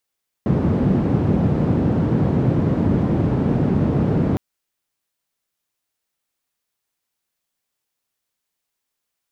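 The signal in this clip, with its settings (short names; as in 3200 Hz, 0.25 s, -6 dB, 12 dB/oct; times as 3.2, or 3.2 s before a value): noise band 110–200 Hz, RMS -18 dBFS 3.91 s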